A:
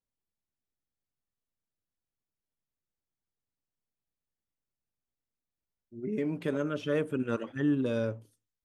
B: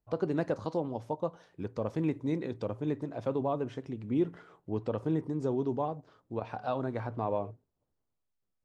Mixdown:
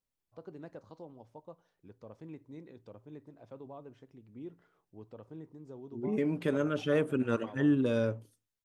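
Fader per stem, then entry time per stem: +1.0 dB, -16.5 dB; 0.00 s, 0.25 s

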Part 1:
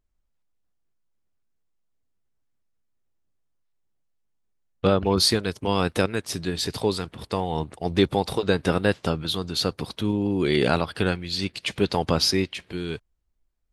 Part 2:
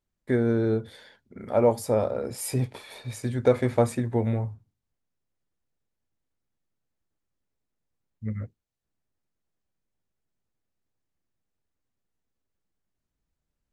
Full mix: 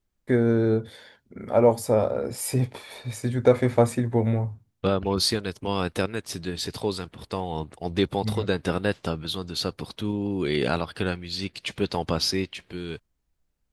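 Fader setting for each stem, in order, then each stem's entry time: -3.5 dB, +2.5 dB; 0.00 s, 0.00 s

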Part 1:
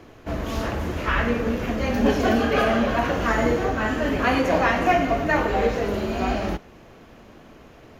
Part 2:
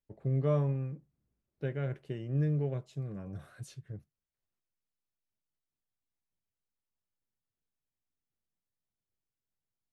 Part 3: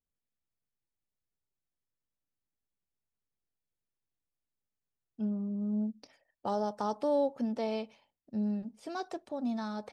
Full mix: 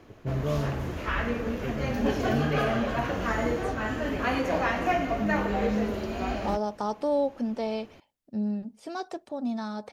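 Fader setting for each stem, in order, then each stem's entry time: -6.5 dB, -0.5 dB, +3.0 dB; 0.00 s, 0.00 s, 0.00 s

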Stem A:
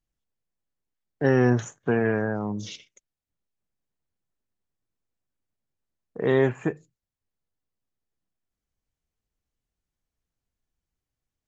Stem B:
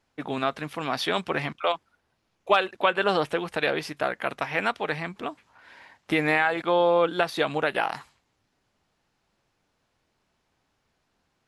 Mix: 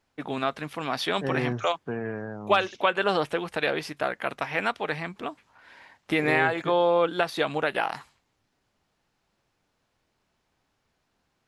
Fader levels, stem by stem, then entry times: -9.0 dB, -1.0 dB; 0.00 s, 0.00 s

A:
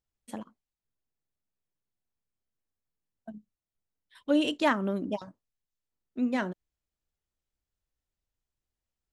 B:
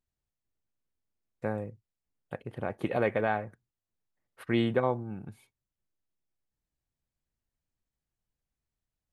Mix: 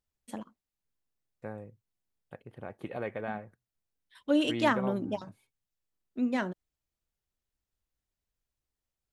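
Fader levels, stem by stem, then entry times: -1.0 dB, -8.5 dB; 0.00 s, 0.00 s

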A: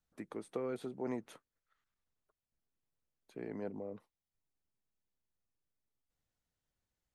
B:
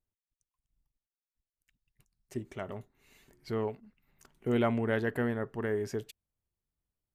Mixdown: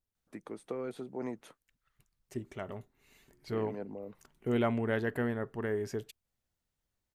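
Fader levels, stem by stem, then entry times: +0.5 dB, -1.5 dB; 0.15 s, 0.00 s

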